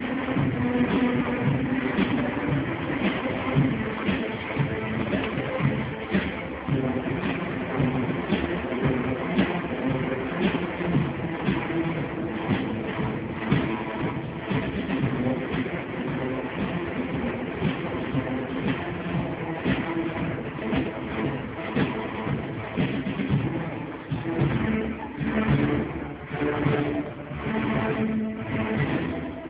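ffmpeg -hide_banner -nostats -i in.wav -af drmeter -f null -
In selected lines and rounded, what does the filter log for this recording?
Channel 1: DR: 13.4
Overall DR: 13.4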